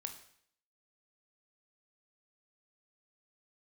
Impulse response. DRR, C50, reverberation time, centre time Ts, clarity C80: 5.5 dB, 10.0 dB, 0.65 s, 14 ms, 13.0 dB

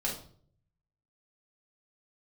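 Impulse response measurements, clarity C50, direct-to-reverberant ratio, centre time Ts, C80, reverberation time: 6.0 dB, -4.0 dB, 29 ms, 11.0 dB, 0.55 s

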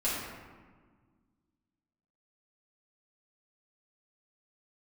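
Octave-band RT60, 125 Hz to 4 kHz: 2.2, 2.4, 1.6, 1.5, 1.2, 0.85 s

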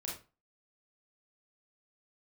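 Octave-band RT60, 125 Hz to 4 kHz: 0.35, 0.35, 0.35, 0.35, 0.30, 0.25 s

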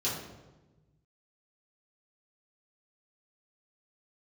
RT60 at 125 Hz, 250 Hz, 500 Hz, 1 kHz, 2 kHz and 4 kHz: 2.1, 1.5, 1.3, 1.0, 0.85, 0.75 s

